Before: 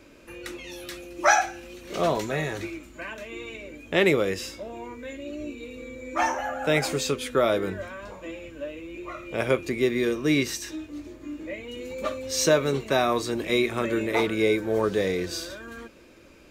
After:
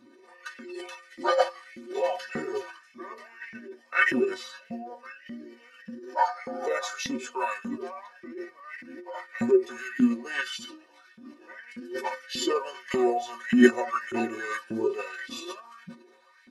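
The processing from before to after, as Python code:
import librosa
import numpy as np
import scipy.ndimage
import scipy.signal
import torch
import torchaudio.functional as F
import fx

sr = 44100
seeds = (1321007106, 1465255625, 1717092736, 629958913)

y = fx.stiff_resonator(x, sr, f0_hz=110.0, decay_s=0.38, stiffness=0.03)
y = fx.filter_lfo_highpass(y, sr, shape='saw_up', hz=1.7, low_hz=210.0, high_hz=3000.0, q=3.2)
y = fx.formant_shift(y, sr, semitones=-5)
y = y * 10.0 ** (6.0 / 20.0)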